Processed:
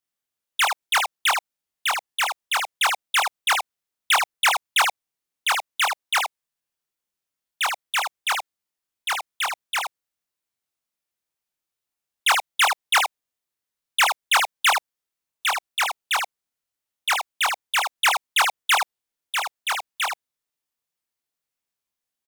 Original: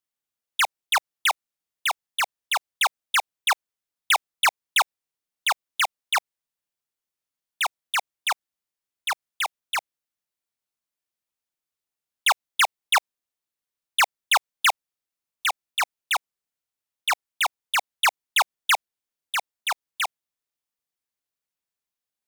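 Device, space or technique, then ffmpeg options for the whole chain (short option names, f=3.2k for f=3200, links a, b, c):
slapback doubling: -filter_complex "[0:a]asplit=3[a][b][c];[b]adelay=24,volume=-4dB[d];[c]adelay=78,volume=-4.5dB[e];[a][d][e]amix=inputs=3:normalize=0"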